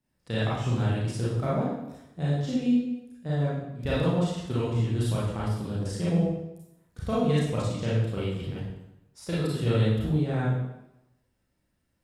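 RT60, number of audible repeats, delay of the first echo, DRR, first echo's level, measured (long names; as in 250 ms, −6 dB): 0.90 s, no echo audible, no echo audible, −9.0 dB, no echo audible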